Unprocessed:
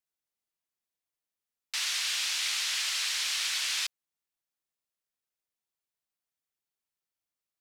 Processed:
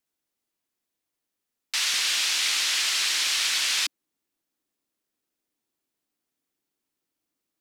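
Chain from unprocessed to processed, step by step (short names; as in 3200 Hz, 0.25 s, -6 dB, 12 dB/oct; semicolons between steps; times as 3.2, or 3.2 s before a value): bell 290 Hz +8.5 dB 1 oct, from 1.94 s +15 dB; gain +6 dB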